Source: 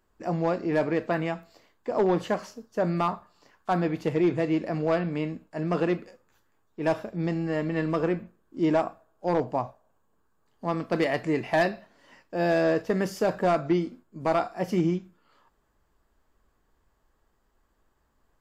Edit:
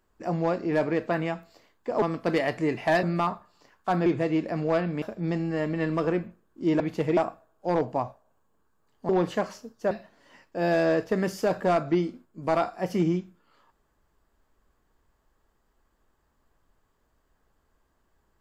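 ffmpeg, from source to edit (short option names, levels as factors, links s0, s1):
-filter_complex "[0:a]asplit=9[s0][s1][s2][s3][s4][s5][s6][s7][s8];[s0]atrim=end=2.022[s9];[s1]atrim=start=10.678:end=11.692[s10];[s2]atrim=start=2.838:end=3.872[s11];[s3]atrim=start=4.238:end=5.202[s12];[s4]atrim=start=6.978:end=8.762[s13];[s5]atrim=start=3.868:end=4.242[s14];[s6]atrim=start=8.758:end=10.682[s15];[s7]atrim=start=2.018:end=2.842[s16];[s8]atrim=start=11.688[s17];[s9][s10]acrossfade=d=0.004:c1=hsin:c2=hsin[s18];[s18][s11]acrossfade=d=0.004:c1=hsin:c2=hsin[s19];[s19][s12]acrossfade=d=0.004:c1=hsin:c2=hsin[s20];[s20][s13]acrossfade=d=0.004:c1=hsin:c2=hsin[s21];[s21][s14]acrossfade=d=0.004:c1=hsin:c2=hsin[s22];[s22][s15]acrossfade=d=0.004:c1=hsin:c2=hsin[s23];[s23][s16]acrossfade=d=0.004:c1=hsin:c2=hsin[s24];[s24][s17]acrossfade=d=0.004:c1=hsin:c2=hsin"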